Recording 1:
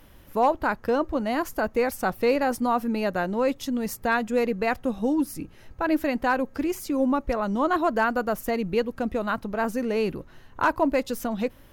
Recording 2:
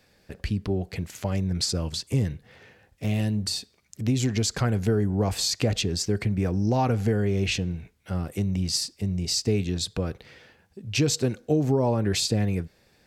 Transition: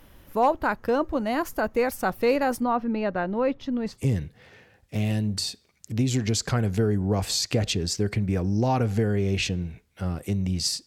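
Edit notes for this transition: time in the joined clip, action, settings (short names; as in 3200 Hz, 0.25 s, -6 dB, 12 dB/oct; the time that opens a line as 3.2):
recording 1
2.63–4.04 air absorption 230 m
3.95 switch to recording 2 from 2.04 s, crossfade 0.18 s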